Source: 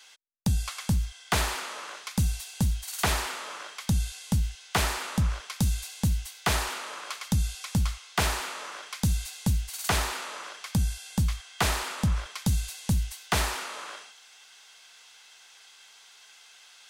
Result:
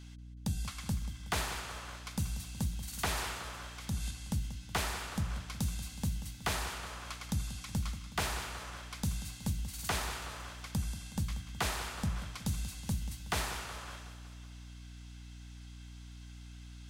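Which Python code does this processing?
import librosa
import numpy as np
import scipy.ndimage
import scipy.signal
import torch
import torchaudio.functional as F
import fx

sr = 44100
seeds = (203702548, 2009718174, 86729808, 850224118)

p1 = fx.transient(x, sr, attack_db=-3, sustain_db=4, at=(3.06, 4.11))
p2 = fx.hum_notches(p1, sr, base_hz=60, count=3)
p3 = fx.add_hum(p2, sr, base_hz=60, snr_db=11)
p4 = p3 + fx.echo_feedback(p3, sr, ms=185, feedback_pct=59, wet_db=-13, dry=0)
y = F.gain(torch.from_numpy(p4), -8.0).numpy()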